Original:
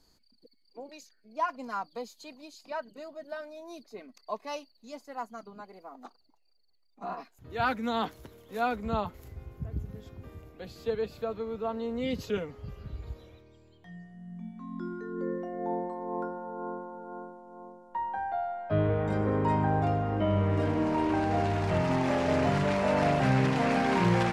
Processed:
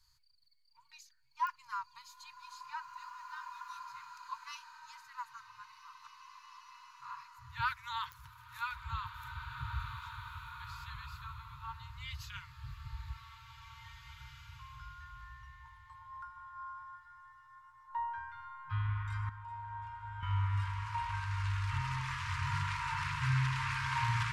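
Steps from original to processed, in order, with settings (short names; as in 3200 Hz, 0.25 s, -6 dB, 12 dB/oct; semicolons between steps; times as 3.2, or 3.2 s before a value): FFT band-reject 150–900 Hz; 16.35–16.96 dynamic EQ 1200 Hz, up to +6 dB, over -56 dBFS, Q 1.5; 19.29–20.23 level quantiser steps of 23 dB; pops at 1.47/8.12, -26 dBFS; bloom reverb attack 2.18 s, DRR 5 dB; gain -4 dB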